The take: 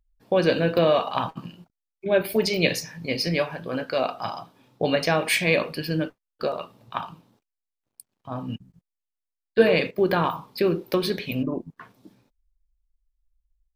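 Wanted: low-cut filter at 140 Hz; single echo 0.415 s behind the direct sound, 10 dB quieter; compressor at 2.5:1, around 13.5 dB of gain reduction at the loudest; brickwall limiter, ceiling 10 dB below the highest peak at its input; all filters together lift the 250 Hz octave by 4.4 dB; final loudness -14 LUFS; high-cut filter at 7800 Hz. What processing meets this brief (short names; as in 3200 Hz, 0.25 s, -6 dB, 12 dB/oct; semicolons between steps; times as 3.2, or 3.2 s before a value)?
HPF 140 Hz; LPF 7800 Hz; bell 250 Hz +7 dB; compressor 2.5:1, threshold -30 dBFS; limiter -23 dBFS; echo 0.415 s -10 dB; gain +20.5 dB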